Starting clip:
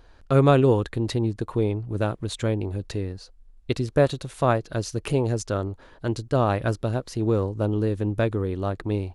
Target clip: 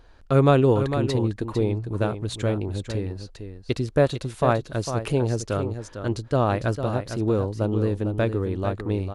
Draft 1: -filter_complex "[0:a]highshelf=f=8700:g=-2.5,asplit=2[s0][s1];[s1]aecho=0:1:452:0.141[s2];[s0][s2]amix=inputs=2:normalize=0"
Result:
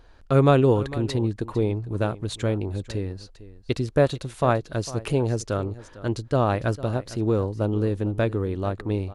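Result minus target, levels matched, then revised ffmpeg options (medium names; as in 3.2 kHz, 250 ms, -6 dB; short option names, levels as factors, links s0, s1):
echo-to-direct -8 dB
-filter_complex "[0:a]highshelf=f=8700:g=-2.5,asplit=2[s0][s1];[s1]aecho=0:1:452:0.355[s2];[s0][s2]amix=inputs=2:normalize=0"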